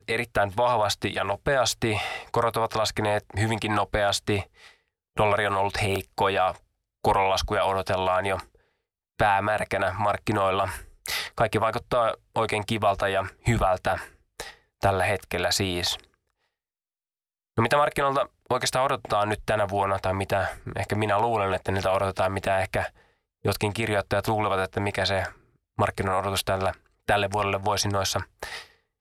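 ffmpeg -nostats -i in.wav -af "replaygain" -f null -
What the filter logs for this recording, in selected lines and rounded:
track_gain = +6.6 dB
track_peak = 0.216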